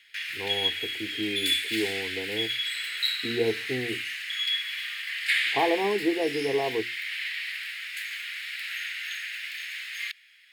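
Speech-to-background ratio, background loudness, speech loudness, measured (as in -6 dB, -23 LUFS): -1.5 dB, -29.5 LUFS, -31.0 LUFS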